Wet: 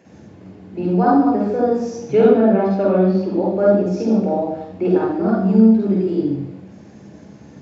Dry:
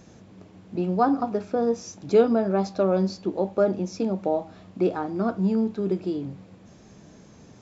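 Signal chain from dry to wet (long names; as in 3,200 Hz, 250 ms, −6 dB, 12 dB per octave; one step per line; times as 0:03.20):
0:01.94–0:03.35: high shelf with overshoot 4,300 Hz −10.5 dB, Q 1.5
convolution reverb RT60 0.90 s, pre-delay 47 ms, DRR −3 dB
level −6.5 dB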